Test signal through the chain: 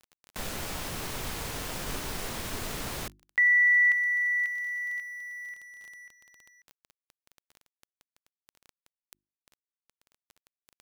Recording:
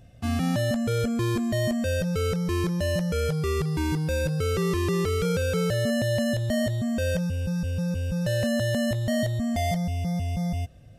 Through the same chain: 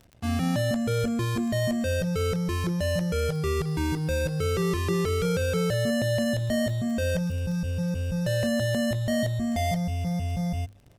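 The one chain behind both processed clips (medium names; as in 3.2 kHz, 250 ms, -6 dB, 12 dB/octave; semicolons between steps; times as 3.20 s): crossover distortion -52.5 dBFS; hum notches 50/100/150/200/250/300/350 Hz; crackle 12 per s -36 dBFS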